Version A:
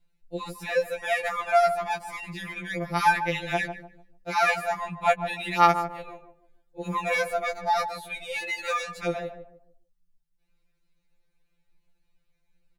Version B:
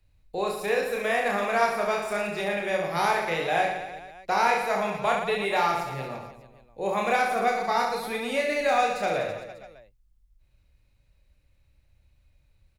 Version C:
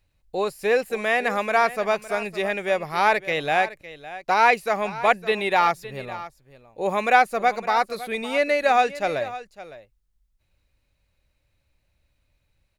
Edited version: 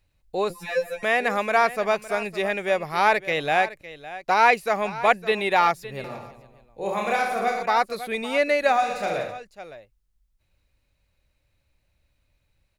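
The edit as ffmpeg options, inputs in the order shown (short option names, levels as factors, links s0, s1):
-filter_complex "[1:a]asplit=2[s0][s1];[2:a]asplit=4[s2][s3][s4][s5];[s2]atrim=end=0.502[s6];[0:a]atrim=start=0.498:end=1.032[s7];[s3]atrim=start=1.028:end=6.042[s8];[s0]atrim=start=6.038:end=7.632[s9];[s4]atrim=start=7.628:end=8.91[s10];[s1]atrim=start=8.67:end=9.45[s11];[s5]atrim=start=9.21[s12];[s6][s7]acrossfade=d=0.004:c1=hsin:c2=hsin[s13];[s13][s8]acrossfade=d=0.004:c1=hsin:c2=hsin[s14];[s14][s9]acrossfade=d=0.004:c1=hsin:c2=hsin[s15];[s15][s10]acrossfade=d=0.004:c1=hsin:c2=hsin[s16];[s16][s11]acrossfade=d=0.24:c1=tri:c2=tri[s17];[s17][s12]acrossfade=d=0.24:c1=tri:c2=tri"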